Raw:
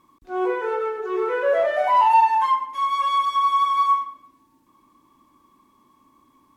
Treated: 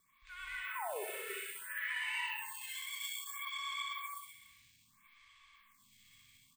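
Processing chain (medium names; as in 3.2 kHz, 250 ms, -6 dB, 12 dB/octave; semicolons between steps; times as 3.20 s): elliptic band-stop 110–2000 Hz, stop band 60 dB; resonant low shelf 150 Hz -13 dB, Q 1.5; compression 3:1, threshold -55 dBFS, peak gain reduction 17.5 dB; painted sound fall, 0.75–1.04 s, 360–1100 Hz -47 dBFS; vibrato 8 Hz 50 cents; feedback delay 63 ms, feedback 40%, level -4 dB; gated-style reverb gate 310 ms rising, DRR -5.5 dB; careless resampling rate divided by 4×, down filtered, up hold; lamp-driven phase shifter 0.61 Hz; trim +6.5 dB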